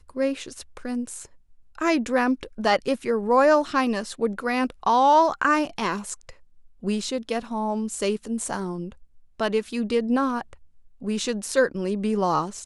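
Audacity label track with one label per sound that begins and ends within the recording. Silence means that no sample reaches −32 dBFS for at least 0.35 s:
1.780000	6.300000	sound
6.830000	8.920000	sound
9.400000	10.530000	sound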